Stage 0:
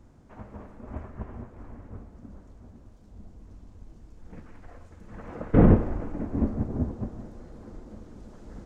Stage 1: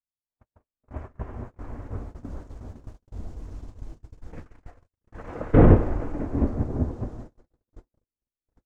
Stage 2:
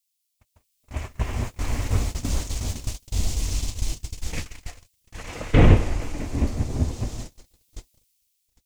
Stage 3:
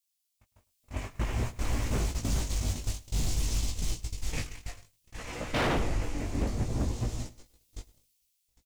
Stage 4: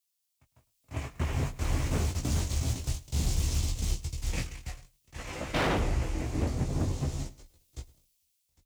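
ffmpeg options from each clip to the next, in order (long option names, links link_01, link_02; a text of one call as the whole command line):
ffmpeg -i in.wav -af "dynaudnorm=framelen=330:gausssize=11:maxgain=12dB,equalizer=frequency=200:width=3.7:gain=-9,agate=range=-55dB:threshold=-37dB:ratio=16:detection=peak" out.wav
ffmpeg -i in.wav -af "equalizer=frequency=380:width_type=o:width=2.4:gain=-6.5,dynaudnorm=framelen=440:gausssize=5:maxgain=14dB,aexciter=amount=5:drive=7.7:freq=2200,volume=-1dB" out.wav
ffmpeg -i in.wav -filter_complex "[0:a]flanger=delay=16.5:depth=3.9:speed=0.56,aeval=exprs='0.0794*(abs(mod(val(0)/0.0794+3,4)-2)-1)':channel_layout=same,asplit=2[link_01][link_02];[link_02]adelay=105,volume=-20dB,highshelf=frequency=4000:gain=-2.36[link_03];[link_01][link_03]amix=inputs=2:normalize=0" out.wav
ffmpeg -i in.wav -af "afreqshift=24" out.wav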